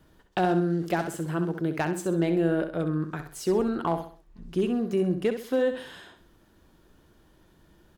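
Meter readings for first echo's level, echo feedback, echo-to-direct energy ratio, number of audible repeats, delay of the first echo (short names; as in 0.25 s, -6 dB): -9.0 dB, 36%, -8.5 dB, 3, 65 ms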